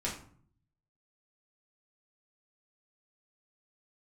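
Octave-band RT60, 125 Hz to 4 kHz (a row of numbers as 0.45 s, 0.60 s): 1.0 s, 0.80 s, 0.55 s, 0.50 s, 0.40 s, 0.30 s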